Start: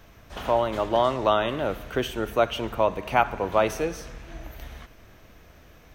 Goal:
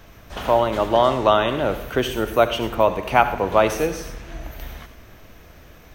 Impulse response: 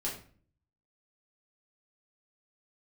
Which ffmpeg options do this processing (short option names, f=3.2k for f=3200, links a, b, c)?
-filter_complex "[0:a]asplit=2[a][b];[b]aemphasis=mode=production:type=50fm[c];[1:a]atrim=start_sample=2205,adelay=71[d];[c][d]afir=irnorm=-1:irlink=0,volume=-16.5dB[e];[a][e]amix=inputs=2:normalize=0,volume=5dB"